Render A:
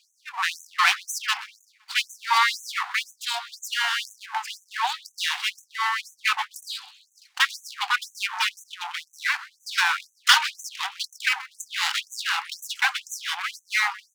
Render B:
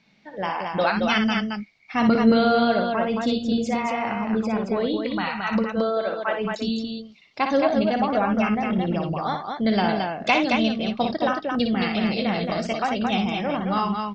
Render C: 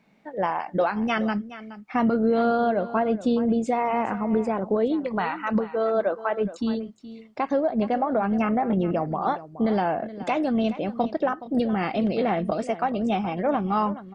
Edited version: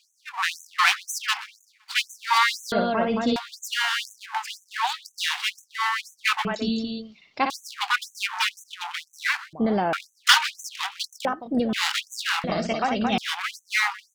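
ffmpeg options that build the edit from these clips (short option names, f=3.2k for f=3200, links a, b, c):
-filter_complex "[1:a]asplit=3[a][b][c];[2:a]asplit=2[d][e];[0:a]asplit=6[f][g][h][i][j][k];[f]atrim=end=2.722[l];[a]atrim=start=2.718:end=3.362[m];[g]atrim=start=3.358:end=6.452[n];[b]atrim=start=6.448:end=7.502[o];[h]atrim=start=7.498:end=9.532[p];[d]atrim=start=9.528:end=9.932[q];[i]atrim=start=9.928:end=11.252[r];[e]atrim=start=11.248:end=11.732[s];[j]atrim=start=11.728:end=12.442[t];[c]atrim=start=12.438:end=13.182[u];[k]atrim=start=13.178[v];[l][m]acrossfade=d=0.004:c1=hsin:c2=hsin[w];[w][n]acrossfade=d=0.004:c1=hsin:c2=hsin[x];[x][o]acrossfade=d=0.004:c1=hsin:c2=hsin[y];[y][p]acrossfade=d=0.004:c1=hsin:c2=hsin[z];[z][q]acrossfade=d=0.004:c1=hsin:c2=hsin[aa];[aa][r]acrossfade=d=0.004:c1=hsin:c2=hsin[ab];[ab][s]acrossfade=d=0.004:c1=hsin:c2=hsin[ac];[ac][t]acrossfade=d=0.004:c1=hsin:c2=hsin[ad];[ad][u]acrossfade=d=0.004:c1=hsin:c2=hsin[ae];[ae][v]acrossfade=d=0.004:c1=hsin:c2=hsin"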